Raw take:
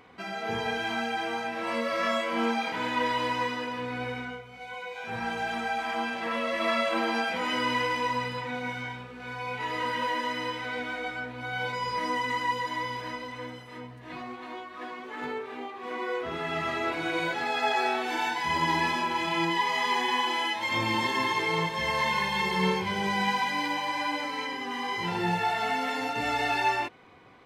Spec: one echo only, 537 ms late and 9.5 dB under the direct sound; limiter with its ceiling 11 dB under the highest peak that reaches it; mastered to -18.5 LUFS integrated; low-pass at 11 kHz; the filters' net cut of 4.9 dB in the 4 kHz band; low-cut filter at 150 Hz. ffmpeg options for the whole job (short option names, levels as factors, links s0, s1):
-af "highpass=150,lowpass=11000,equalizer=f=4000:t=o:g=-7,alimiter=level_in=1.19:limit=0.0631:level=0:latency=1,volume=0.841,aecho=1:1:537:0.335,volume=5.62"